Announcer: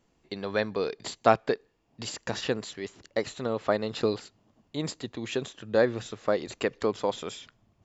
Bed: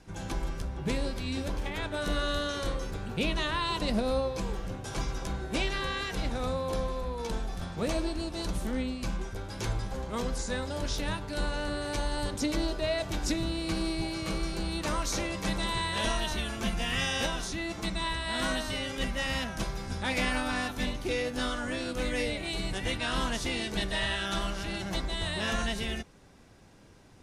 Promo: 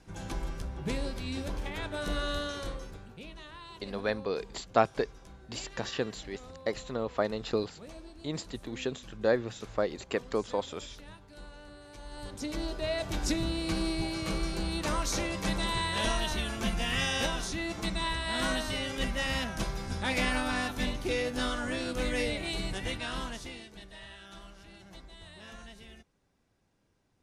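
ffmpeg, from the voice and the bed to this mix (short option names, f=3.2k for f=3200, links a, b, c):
-filter_complex "[0:a]adelay=3500,volume=-3.5dB[a];[1:a]volume=14.5dB,afade=t=out:st=2.38:d=0.83:silence=0.188365,afade=t=in:st=11.98:d=1.27:silence=0.141254,afade=t=out:st=22.44:d=1.28:silence=0.133352[b];[a][b]amix=inputs=2:normalize=0"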